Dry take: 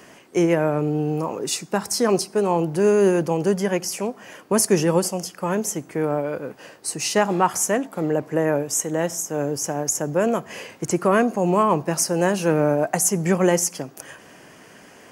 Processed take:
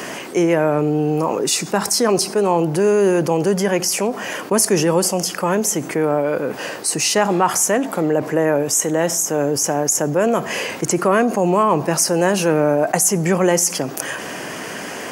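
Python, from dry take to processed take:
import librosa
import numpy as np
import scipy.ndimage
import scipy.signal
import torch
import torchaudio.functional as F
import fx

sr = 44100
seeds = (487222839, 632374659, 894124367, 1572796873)

y = fx.highpass(x, sr, hz=180.0, slope=6)
y = fx.env_flatten(y, sr, amount_pct=50)
y = F.gain(torch.from_numpy(y), 1.5).numpy()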